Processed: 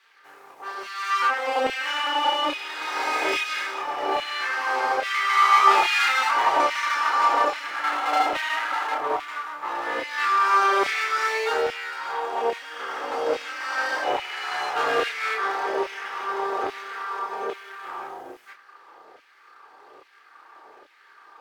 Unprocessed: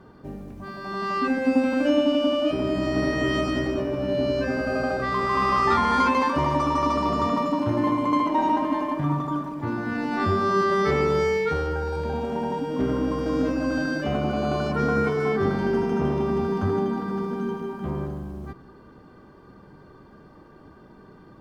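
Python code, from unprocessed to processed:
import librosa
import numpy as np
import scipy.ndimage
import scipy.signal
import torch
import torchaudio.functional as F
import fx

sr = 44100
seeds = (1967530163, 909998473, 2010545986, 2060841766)

y = fx.lower_of_two(x, sr, delay_ms=2.4)
y = fx.filter_lfo_highpass(y, sr, shape='saw_down', hz=1.2, low_hz=540.0, high_hz=2500.0, q=1.7)
y = fx.chorus_voices(y, sr, voices=4, hz=0.31, base_ms=30, depth_ms=4.0, mix_pct=40)
y = y * 10.0 ** (6.5 / 20.0)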